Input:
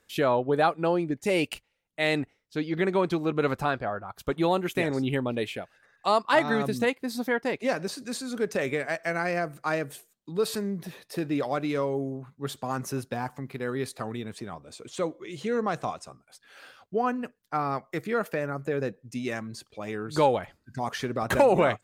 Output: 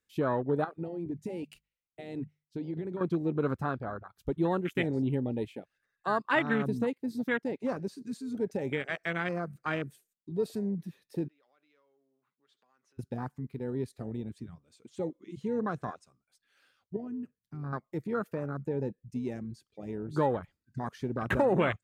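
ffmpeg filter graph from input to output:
-filter_complex "[0:a]asettb=1/sr,asplit=3[s0][s1][s2];[s0]atrim=end=0.644[s3];[s1]atrim=start=0.64:end=3.01,asetpts=PTS-STARTPTS,afade=t=in:d=0.004:c=qsin,afade=t=out:st=2.366:d=0.004:c=qsin,bandreject=f=50:t=h:w=6,bandreject=f=100:t=h:w=6,bandreject=f=150:t=h:w=6,bandreject=f=200:t=h:w=6,acompressor=threshold=0.0398:ratio=16:attack=3.2:release=140:knee=1:detection=peak[s4];[s2]atrim=start=3.006[s5];[s3][s4]acrossfade=d=0.004:c1=hsin:c2=qsin[s6];[s6][s5]acrossfade=d=0.004:c1=qsin:c2=hsin,asettb=1/sr,asplit=3[s7][s8][s9];[s7]atrim=end=11.284[s10];[s8]atrim=start=11.28:end=12.99,asetpts=PTS-STARTPTS,afade=t=in:d=0.004:c=qsin,afade=t=out:st=1.706:d=0.004:c=qsin,acompressor=threshold=0.00562:ratio=4:attack=3.2:release=140:knee=1:detection=peak,highpass=520,lowpass=4400[s11];[s9]atrim=start=12.986[s12];[s10][s11]acrossfade=d=0.004:c1=hsin:c2=qsin[s13];[s13][s12]acrossfade=d=0.004:c1=qsin:c2=hsin,asettb=1/sr,asplit=3[s14][s15][s16];[s14]atrim=end=16.964[s17];[s15]atrim=start=16.96:end=17.73,asetpts=PTS-STARTPTS,afade=t=in:d=0.004:c=qsin,afade=t=out:st=0.766:d=0.004:c=qsin,equalizer=f=110:w=0.66:g=14,acompressor=threshold=0.0141:ratio=2.5:attack=3.2:release=140:knee=1:detection=peak[s18];[s16]atrim=start=17.726[s19];[s17][s18]acrossfade=d=0.004:c1=hsin:c2=qsin[s20];[s20][s19]acrossfade=d=0.004:c1=qsin:c2=hsin,afwtdn=0.0355,equalizer=f=700:w=1:g=-8.5"

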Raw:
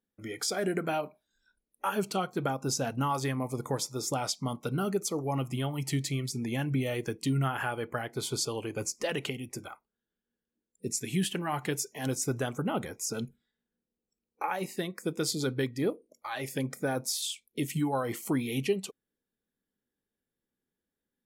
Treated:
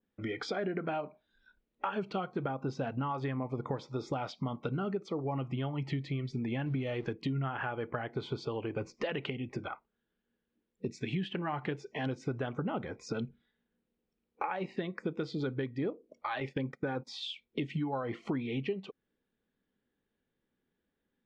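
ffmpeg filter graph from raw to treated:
-filter_complex "[0:a]asettb=1/sr,asplit=3[s0][s1][s2];[s0]atrim=end=6.664[s3];[s1]atrim=start=6.66:end=7.13,asetpts=PTS-STARTPTS,afade=t=in:d=0.004:c=qsin,afade=t=out:st=0.466:d=0.004:c=qsin,aeval=exprs='val(0)+0.5*0.00376*sgn(val(0))':c=same,bass=f=250:g=0,treble=f=4000:g=9[s4];[s2]atrim=start=7.126[s5];[s3][s4]acrossfade=d=0.004:c1=hsin:c2=qsin[s6];[s6][s5]acrossfade=d=0.004:c1=qsin:c2=hsin,asettb=1/sr,asplit=3[s7][s8][s9];[s7]atrim=end=16.404[s10];[s8]atrim=start=16.4:end=17.29,asetpts=PTS-STARTPTS,afade=t=in:d=0.004:c=qsin,afade=t=out:st=0.886:d=0.004:c=qsin,agate=range=0.126:threshold=0.00794:ratio=16:release=100:detection=peak,asuperstop=centerf=640:order=4:qfactor=5.6[s11];[s9]atrim=start=17.286[s12];[s10][s11]acrossfade=d=0.004:c1=hsin:c2=qsin[s13];[s13][s12]acrossfade=d=0.004:c1=qsin:c2=hsin,lowpass=f=3600:w=0.5412,lowpass=f=3600:w=1.3066,acompressor=threshold=0.0112:ratio=4,adynamicequalizer=threshold=0.00141:dfrequency=2100:dqfactor=0.7:tfrequency=2100:tqfactor=0.7:attack=5:release=100:ratio=0.375:range=3:mode=cutabove:tftype=highshelf,volume=2"

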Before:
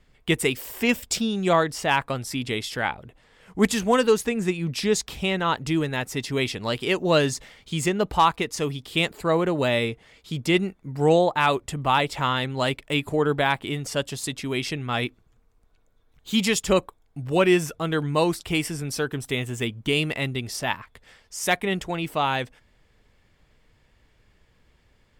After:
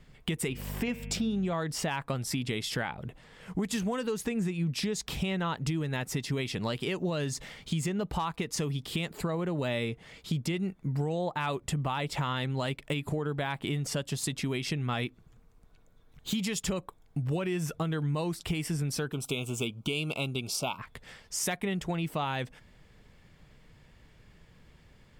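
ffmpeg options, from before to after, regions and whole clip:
-filter_complex "[0:a]asettb=1/sr,asplit=3[s0][s1][s2];[s0]atrim=end=0.484[s3];[s1]atrim=start=0.48:end=1.53,asetpts=PTS-STARTPTS,afade=t=in:d=0.004:c=qsin,afade=t=out:st=1.046:d=0.004:c=qsin,highshelf=f=3800:g=-10,bandreject=f=116.1:t=h:w=4,bandreject=f=232.2:t=h:w=4,bandreject=f=348.3:t=h:w=4,bandreject=f=464.4:t=h:w=4,bandreject=f=580.5:t=h:w=4,bandreject=f=696.6:t=h:w=4,bandreject=f=812.7:t=h:w=4,bandreject=f=928.8:t=h:w=4,bandreject=f=1044.9:t=h:w=4,bandreject=f=1161:t=h:w=4,bandreject=f=1277.1:t=h:w=4,bandreject=f=1393.2:t=h:w=4,bandreject=f=1509.3:t=h:w=4,bandreject=f=1625.4:t=h:w=4,bandreject=f=1741.5:t=h:w=4,bandreject=f=1857.6:t=h:w=4,bandreject=f=1973.7:t=h:w=4,bandreject=f=2089.8:t=h:w=4,bandreject=f=2205.9:t=h:w=4,bandreject=f=2322:t=h:w=4,bandreject=f=2438.1:t=h:w=4,bandreject=f=2554.2:t=h:w=4,bandreject=f=2670.3:t=h:w=4,bandreject=f=2786.4:t=h:w=4,bandreject=f=2902.5:t=h:w=4,bandreject=f=3018.6:t=h:w=4,bandreject=f=3134.7:t=h:w=4,bandreject=f=3250.8:t=h:w=4,bandreject=f=3366.9:t=h:w=4,aeval=exprs='val(0)+0.01*(sin(2*PI*50*n/s)+sin(2*PI*2*50*n/s)/2+sin(2*PI*3*50*n/s)/3+sin(2*PI*4*50*n/s)/4+sin(2*PI*5*50*n/s)/5)':c=same[s4];[s2]atrim=start=1.526[s5];[s3][s4]acrossfade=d=0.004:c1=hsin:c2=qsin[s6];[s6][s5]acrossfade=d=0.004:c1=qsin:c2=hsin,asettb=1/sr,asplit=3[s7][s8][s9];[s7]atrim=end=19.134[s10];[s8]atrim=start=19.13:end=20.79,asetpts=PTS-STARTPTS,afade=t=in:d=0.004:c=qsin,afade=t=out:st=1.656:d=0.004:c=qsin,asuperstop=centerf=1800:order=12:qfactor=2.4,lowshelf=f=220:g=-10.5[s11];[s9]atrim=start=20.786[s12];[s10][s11]acrossfade=d=0.004:c1=hsin:c2=qsin[s13];[s13][s12]acrossfade=d=0.004:c1=qsin:c2=hsin,equalizer=f=160:w=1.7:g=7.5,alimiter=limit=0.178:level=0:latency=1:release=137,acompressor=threshold=0.0251:ratio=4,volume=1.33"

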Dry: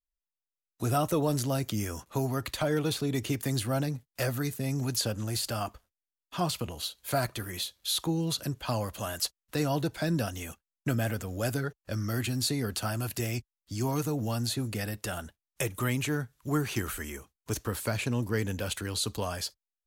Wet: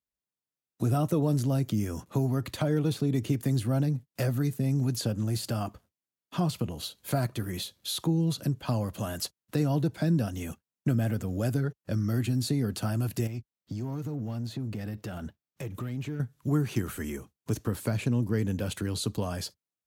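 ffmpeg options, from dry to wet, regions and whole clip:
-filter_complex "[0:a]asettb=1/sr,asplit=3[s0][s1][s2];[s0]atrim=end=13.274[s3];[s1]atrim=start=13.27:end=16.2,asetpts=PTS-STARTPTS,afade=t=in:d=0.004:c=qsin,afade=t=out:st=2.926:d=0.004:c=qsin,equalizer=f=10000:t=o:w=0.93:g=-10.5,acompressor=threshold=0.0126:ratio=4:attack=3.2:release=140:knee=1:detection=peak,volume=63.1,asoftclip=hard,volume=0.0158[s4];[s2]atrim=start=16.196[s5];[s3][s4]acrossfade=d=0.004:c1=hsin:c2=qsin[s6];[s6][s5]acrossfade=d=0.004:c1=qsin:c2=hsin,highpass=82,equalizer=f=160:w=0.4:g=12.5,acompressor=threshold=0.0282:ratio=1.5,volume=0.841"

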